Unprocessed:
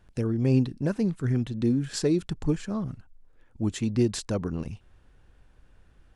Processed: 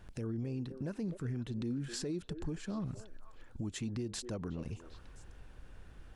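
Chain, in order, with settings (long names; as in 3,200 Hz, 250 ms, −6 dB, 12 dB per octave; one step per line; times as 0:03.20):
downward compressor 2.5 to 1, threshold −43 dBFS, peak gain reduction 17 dB
on a send: echo through a band-pass that steps 255 ms, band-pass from 450 Hz, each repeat 1.4 octaves, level −10 dB
on the sum: brickwall limiter −34.5 dBFS, peak gain reduction 7.5 dB
level +4.5 dB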